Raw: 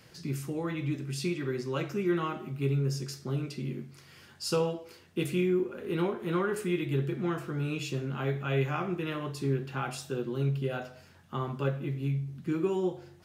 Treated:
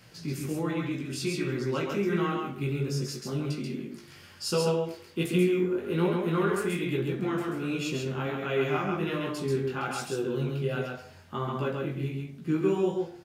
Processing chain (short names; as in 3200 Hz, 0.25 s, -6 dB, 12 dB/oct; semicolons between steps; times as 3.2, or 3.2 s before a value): chorus 1.3 Hz, delay 16.5 ms, depth 4 ms; de-hum 69.5 Hz, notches 29; on a send: echo 0.135 s -3.5 dB; on the sum: gain +5 dB